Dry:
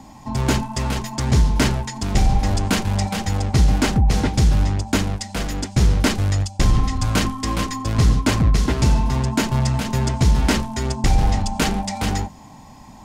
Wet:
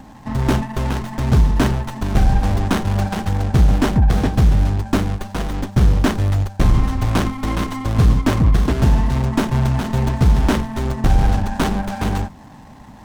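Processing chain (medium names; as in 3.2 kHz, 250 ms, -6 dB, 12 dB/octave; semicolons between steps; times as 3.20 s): sliding maximum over 17 samples; trim +2.5 dB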